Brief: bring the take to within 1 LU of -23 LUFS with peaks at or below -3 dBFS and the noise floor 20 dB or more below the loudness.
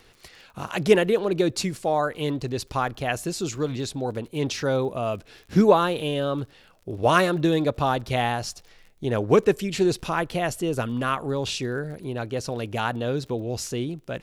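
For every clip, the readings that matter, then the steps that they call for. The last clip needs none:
tick rate 36 per s; loudness -25.0 LUFS; peak level -4.0 dBFS; loudness target -23.0 LUFS
-> de-click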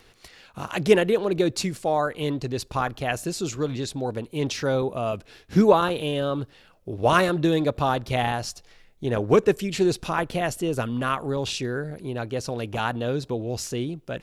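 tick rate 0.70 per s; loudness -25.0 LUFS; peak level -4.0 dBFS; loudness target -23.0 LUFS
-> trim +2 dB; peak limiter -3 dBFS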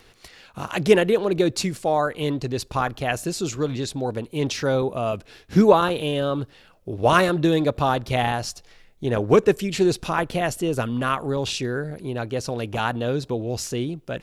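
loudness -23.0 LUFS; peak level -3.0 dBFS; noise floor -53 dBFS

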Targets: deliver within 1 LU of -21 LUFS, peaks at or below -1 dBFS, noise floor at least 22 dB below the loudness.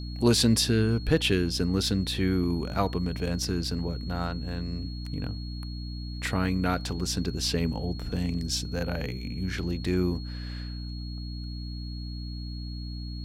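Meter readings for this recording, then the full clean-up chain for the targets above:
hum 60 Hz; highest harmonic 300 Hz; hum level -33 dBFS; steady tone 4.3 kHz; tone level -45 dBFS; loudness -29.0 LUFS; peak level -10.0 dBFS; loudness target -21.0 LUFS
-> de-hum 60 Hz, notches 5; band-stop 4.3 kHz, Q 30; trim +8 dB

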